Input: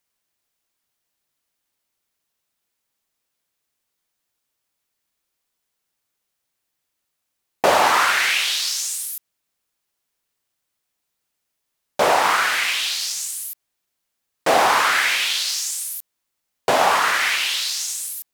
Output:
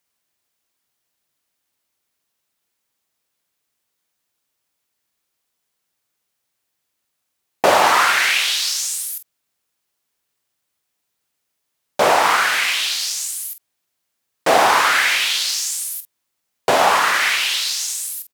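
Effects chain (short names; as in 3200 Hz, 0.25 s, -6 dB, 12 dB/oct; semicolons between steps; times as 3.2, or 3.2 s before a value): HPF 54 Hz; doubler 47 ms -11.5 dB; gain +2 dB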